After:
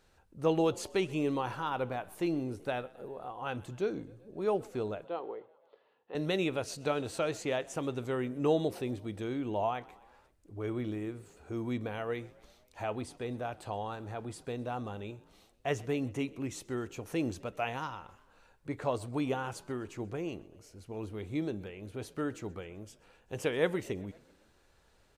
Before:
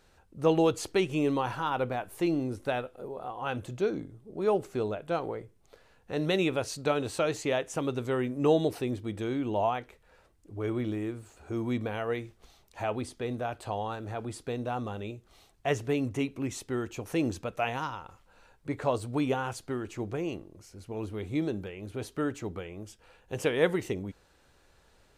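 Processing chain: 5.04–6.15 speaker cabinet 400–3200 Hz, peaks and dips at 410 Hz +4 dB, 620 Hz -5 dB, 1500 Hz -10 dB, 2300 Hz -9 dB; on a send: frequency-shifting echo 0.128 s, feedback 62%, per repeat +38 Hz, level -23.5 dB; on the sum: gain -4 dB

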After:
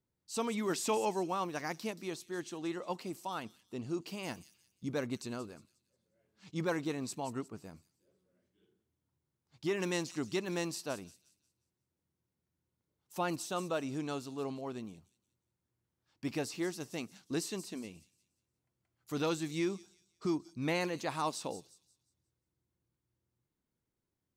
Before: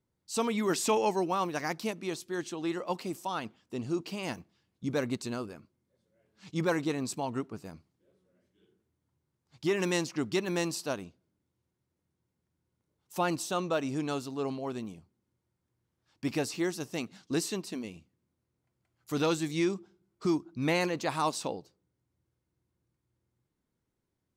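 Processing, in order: 3.93–4.93 high shelf 9400 Hz +7 dB; thin delay 0.178 s, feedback 34%, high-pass 5500 Hz, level -8.5 dB; gain -5 dB

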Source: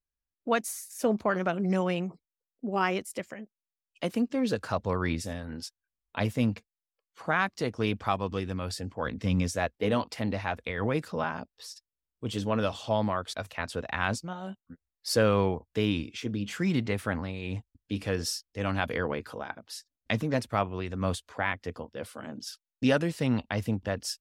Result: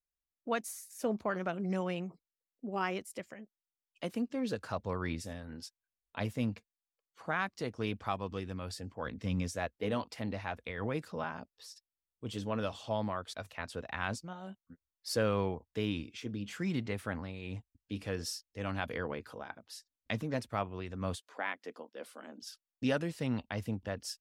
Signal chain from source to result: 21.16–22.42 HPF 240 Hz 24 dB/oct; gain -7 dB

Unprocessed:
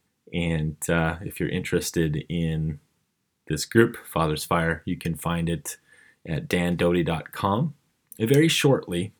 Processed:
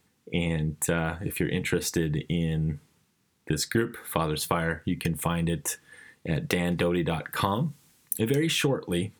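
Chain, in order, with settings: compressor 4:1, threshold -28 dBFS, peak gain reduction 14.5 dB; 7.41–8.21 high shelf 4500 Hz +11.5 dB; gain +4.5 dB

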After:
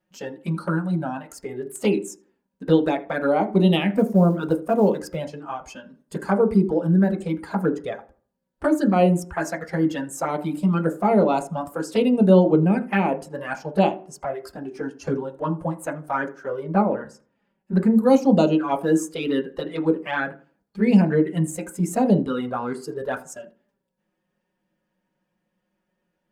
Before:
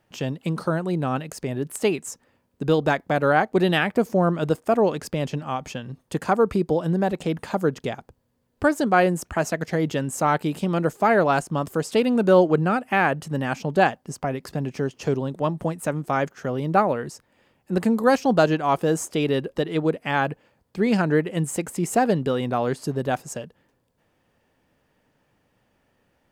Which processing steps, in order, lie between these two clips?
spectral noise reduction 9 dB; 16.63–17.95 LPF 2900 Hz 6 dB/oct; envelope flanger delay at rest 5.5 ms, full sweep at -16 dBFS; 3.91–5.17 companded quantiser 8-bit; darkening echo 80 ms, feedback 33%, low-pass 2000 Hz, level -19 dB; on a send at -4 dB: reverb RT60 0.35 s, pre-delay 3 ms

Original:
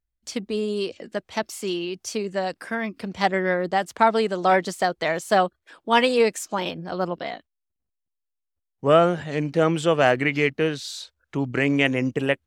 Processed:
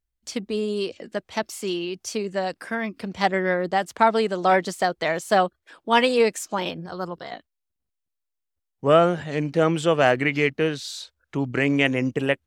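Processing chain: 6.86–7.32 fifteen-band EQ 250 Hz -11 dB, 630 Hz -7 dB, 2500 Hz -12 dB, 10000 Hz +4 dB

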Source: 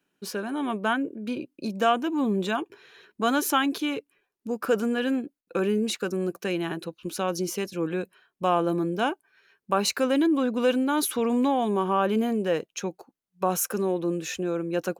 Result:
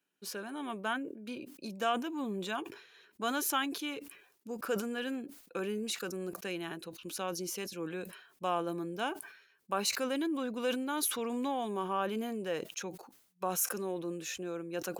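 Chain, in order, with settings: tilt +1.5 dB/oct; sustainer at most 84 dB/s; gain -9 dB

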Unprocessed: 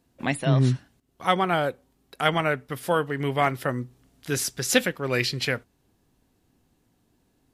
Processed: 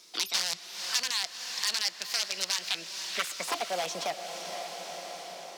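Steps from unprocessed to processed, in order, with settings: HPF 99 Hz 24 dB/oct; notch 620 Hz, Q 12; in parallel at 0 dB: limiter -19.5 dBFS, peak gain reduction 14 dB; on the sum: wrapped overs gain 12.5 dB; band-pass sweep 3700 Hz -> 540 Hz, 3.49–4.9; speed mistake 33 rpm record played at 45 rpm; diffused feedback echo 0.482 s, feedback 50%, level -12.5 dB; on a send at -18 dB: reverb RT60 1.9 s, pre-delay 85 ms; on the sum: three-band squash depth 70%; gain +1.5 dB

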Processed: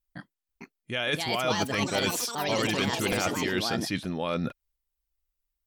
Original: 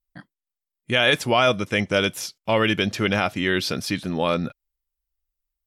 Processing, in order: reverse; compressor, threshold -26 dBFS, peak gain reduction 11.5 dB; reverse; echoes that change speed 0.491 s, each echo +5 st, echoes 3; crackling interface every 0.46 s, samples 128, repeat, from 0.36

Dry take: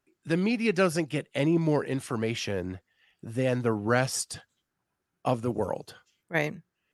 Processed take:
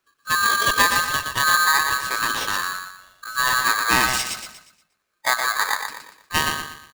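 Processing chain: feedback echo 0.119 s, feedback 38%, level -5.5 dB; formant shift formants -5 st; polarity switched at an audio rate 1400 Hz; gain +5.5 dB

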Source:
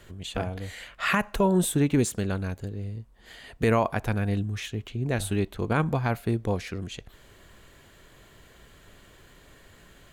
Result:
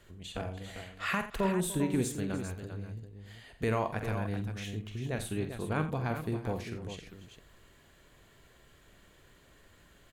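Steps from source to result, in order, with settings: tapped delay 46/87/296/396 ms -9.5/-14/-16.5/-9 dB; gain -8 dB

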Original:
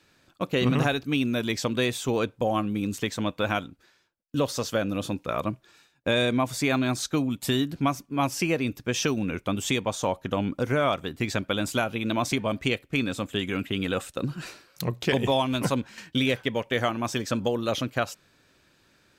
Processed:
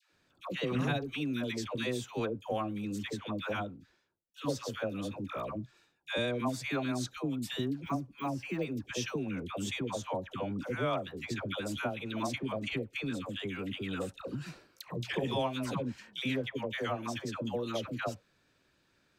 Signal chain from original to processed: 7.68–8.76 de-esser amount 100%; high shelf 8600 Hz -6 dB; dispersion lows, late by 0.112 s, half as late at 760 Hz; gain -8.5 dB

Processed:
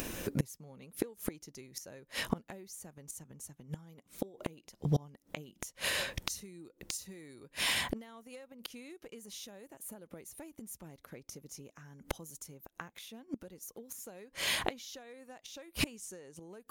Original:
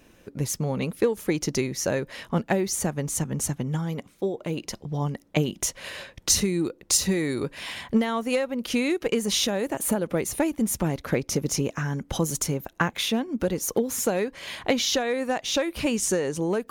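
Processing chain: upward compressor, threshold -34 dBFS; flipped gate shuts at -21 dBFS, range -28 dB; high shelf 7400 Hz +11.5 dB; gain +2.5 dB

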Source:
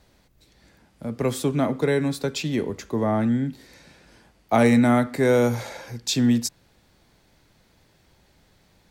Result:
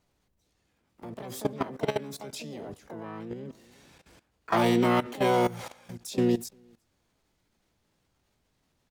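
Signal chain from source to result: outdoor echo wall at 62 m, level -28 dB; harmoniser +7 st -1 dB, +12 st -8 dB; level quantiser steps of 17 dB; gain -5.5 dB

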